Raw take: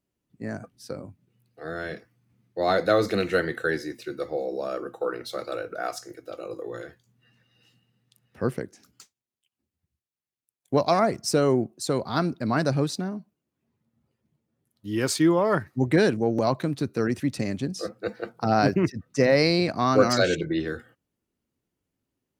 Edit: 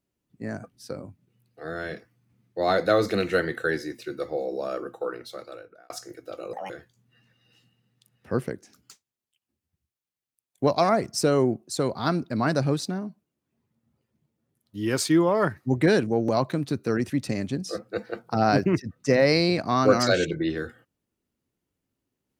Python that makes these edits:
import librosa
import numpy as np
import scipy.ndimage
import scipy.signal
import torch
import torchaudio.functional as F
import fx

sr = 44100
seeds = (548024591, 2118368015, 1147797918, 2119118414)

y = fx.edit(x, sr, fx.fade_out_span(start_s=4.8, length_s=1.1),
    fx.speed_span(start_s=6.53, length_s=0.27, speed=1.6), tone=tone)